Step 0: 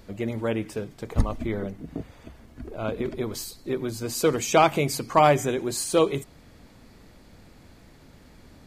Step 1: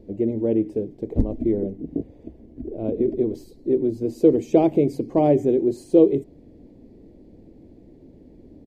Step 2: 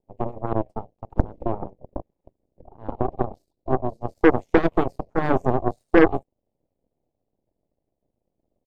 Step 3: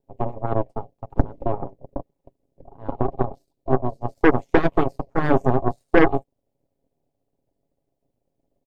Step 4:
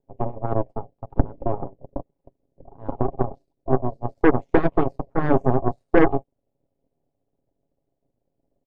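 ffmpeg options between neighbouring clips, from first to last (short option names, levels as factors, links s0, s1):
-af "firequalizer=gain_entry='entry(140,0);entry(320,11);entry(1300,-27);entry(1900,-16);entry(7900,-21)':delay=0.05:min_phase=1"
-af "equalizer=f=630:t=o:w=0.29:g=-6.5,aeval=exprs='0.596*(cos(1*acos(clip(val(0)/0.596,-1,1)))-cos(1*PI/2))+0.0422*(cos(3*acos(clip(val(0)/0.596,-1,1)))-cos(3*PI/2))+0.15*(cos(6*acos(clip(val(0)/0.596,-1,1)))-cos(6*PI/2))+0.0668*(cos(7*acos(clip(val(0)/0.596,-1,1)))-cos(7*PI/2))+0.0299*(cos(8*acos(clip(val(0)/0.596,-1,1)))-cos(8*PI/2))':c=same"
-af "aecho=1:1:7.3:0.42,volume=1.12"
-af "lowpass=f=1400:p=1"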